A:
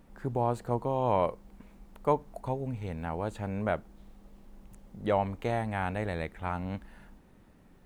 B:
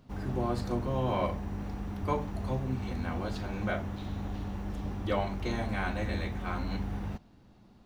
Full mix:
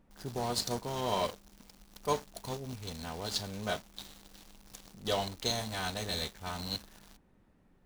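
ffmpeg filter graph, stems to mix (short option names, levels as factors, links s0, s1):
-filter_complex "[0:a]volume=0.422[s0];[1:a]bass=f=250:g=-11,treble=f=4000:g=-2,aexciter=amount=11.8:drive=6:freq=3300,aeval=exprs='sgn(val(0))*max(abs(val(0))-0.0178,0)':c=same,volume=0.944[s1];[s0][s1]amix=inputs=2:normalize=0,highshelf=f=6200:g=-5"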